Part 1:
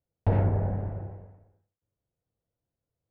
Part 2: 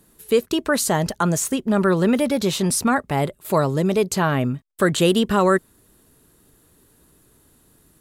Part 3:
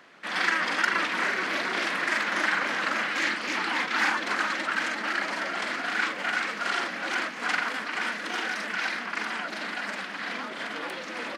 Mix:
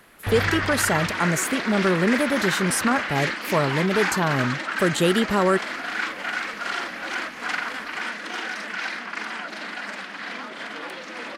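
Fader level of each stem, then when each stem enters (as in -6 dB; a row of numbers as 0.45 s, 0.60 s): -4.5 dB, -3.0 dB, 0.0 dB; 0.00 s, 0.00 s, 0.00 s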